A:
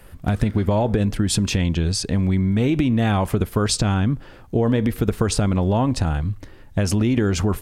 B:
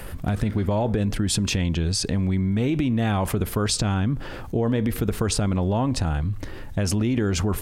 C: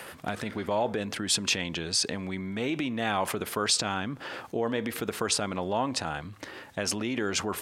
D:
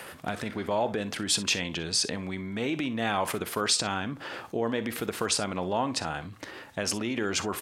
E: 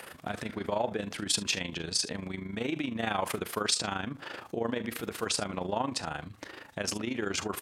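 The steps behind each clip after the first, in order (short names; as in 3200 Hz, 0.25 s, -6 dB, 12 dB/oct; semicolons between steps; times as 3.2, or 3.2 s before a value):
fast leveller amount 50%; gain -5 dB
weighting filter A
tapped delay 44/61 ms -17.5/-17 dB
AM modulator 26 Hz, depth 55%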